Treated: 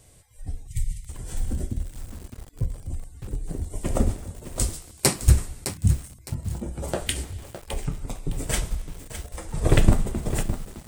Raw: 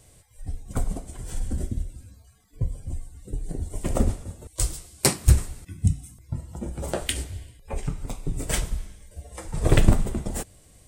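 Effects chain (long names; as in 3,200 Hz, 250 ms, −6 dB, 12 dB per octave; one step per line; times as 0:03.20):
0:00.67–0:01.16: linear-phase brick-wall band-stop 160–1,800 Hz
feedback echo at a low word length 611 ms, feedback 35%, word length 6 bits, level −10 dB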